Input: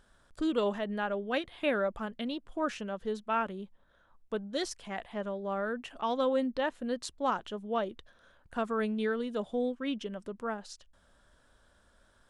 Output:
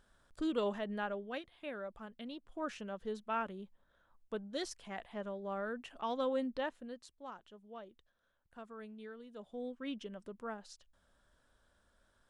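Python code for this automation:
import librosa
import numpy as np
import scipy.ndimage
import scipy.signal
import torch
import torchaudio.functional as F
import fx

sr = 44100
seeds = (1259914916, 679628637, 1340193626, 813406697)

y = fx.gain(x, sr, db=fx.line((1.04, -5.0), (1.61, -15.0), (2.9, -6.0), (6.62, -6.0), (7.1, -18.0), (9.25, -18.0), (9.84, -7.5)))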